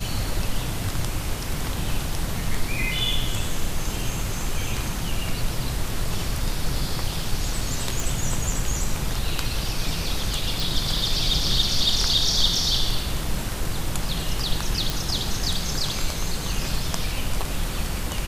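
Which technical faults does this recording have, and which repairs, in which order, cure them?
8.00 s: pop
10.60 s: pop
14.90 s: pop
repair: de-click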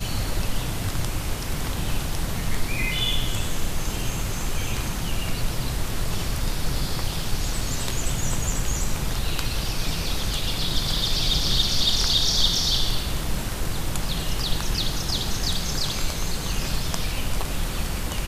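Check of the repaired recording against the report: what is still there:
nothing left

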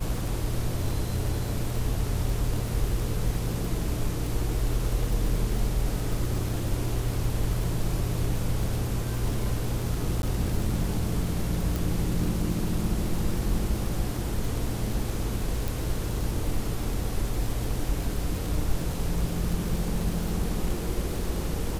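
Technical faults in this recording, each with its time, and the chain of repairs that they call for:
crackle 53 per s -30 dBFS
10.22–10.23 s: dropout 11 ms
11.76 s: pop
15.68 s: pop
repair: de-click; interpolate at 10.22 s, 11 ms

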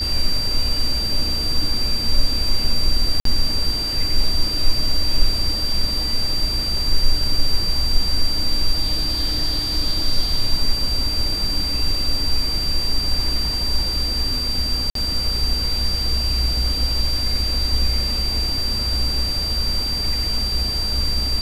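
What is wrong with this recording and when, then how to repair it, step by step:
whine 4.7 kHz -22 dBFS
3.20–3.25 s: dropout 53 ms
14.90–14.95 s: dropout 53 ms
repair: band-stop 4.7 kHz, Q 30; interpolate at 3.20 s, 53 ms; interpolate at 14.90 s, 53 ms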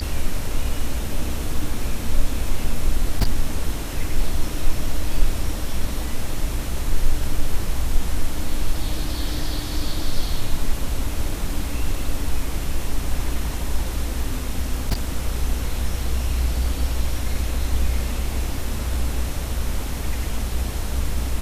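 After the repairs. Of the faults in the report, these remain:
nothing left

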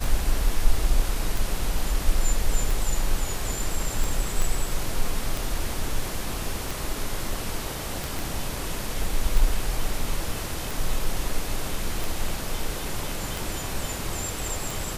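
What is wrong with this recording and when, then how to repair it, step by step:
tick 45 rpm
4.42 s: pop
8.19 s: pop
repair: de-click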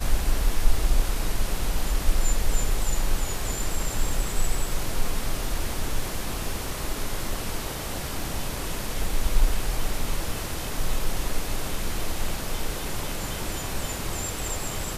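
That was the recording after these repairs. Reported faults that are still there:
4.42 s: pop

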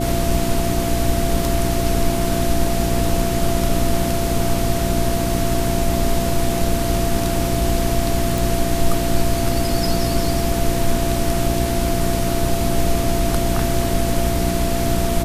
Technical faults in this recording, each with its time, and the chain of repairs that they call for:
hum 60 Hz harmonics 6 -23 dBFS
whine 680 Hz -24 dBFS
8.38 s: pop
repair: de-click; band-stop 680 Hz, Q 30; de-hum 60 Hz, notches 6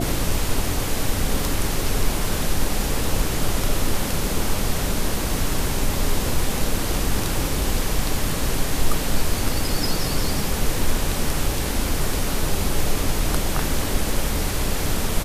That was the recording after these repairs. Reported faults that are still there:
nothing left

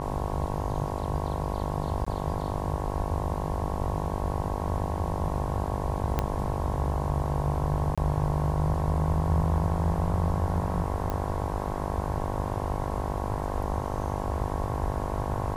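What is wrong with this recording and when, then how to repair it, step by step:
buzz 50 Hz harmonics 22 -33 dBFS
2.05–2.06 s: dropout 15 ms
6.19 s: pop -12 dBFS
7.95–7.98 s: dropout 26 ms
11.10 s: pop -18 dBFS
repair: de-click; de-hum 50 Hz, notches 22; interpolate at 2.05 s, 15 ms; interpolate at 7.95 s, 26 ms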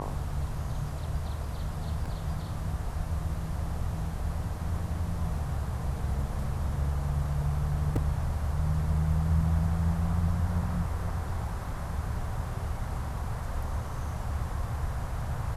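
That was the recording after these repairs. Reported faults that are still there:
6.19 s: pop
11.10 s: pop

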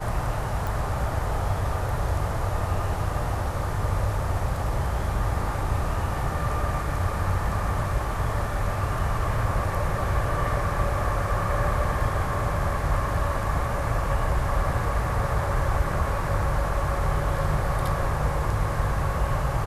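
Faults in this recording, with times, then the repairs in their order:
0.67 s: pop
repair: de-click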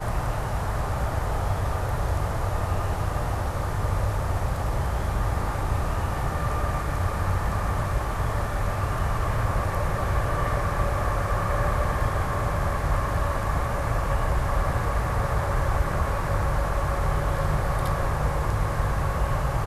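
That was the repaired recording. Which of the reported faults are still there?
nothing left

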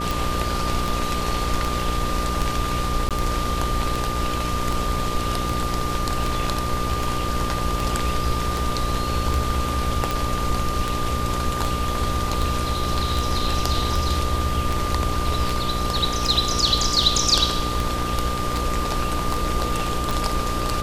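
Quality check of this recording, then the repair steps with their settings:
buzz 60 Hz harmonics 10 -28 dBFS
tick 78 rpm
whine 1.2 kHz -27 dBFS
3.09–3.11 s: dropout 17 ms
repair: de-click; de-hum 60 Hz, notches 10; band-stop 1.2 kHz, Q 30; interpolate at 3.09 s, 17 ms

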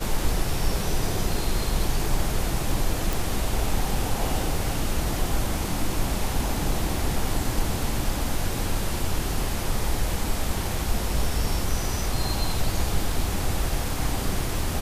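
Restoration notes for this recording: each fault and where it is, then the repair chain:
3.13 s: pop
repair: de-click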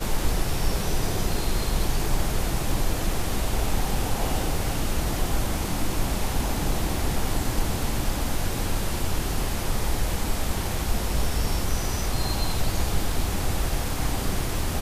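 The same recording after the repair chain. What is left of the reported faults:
nothing left

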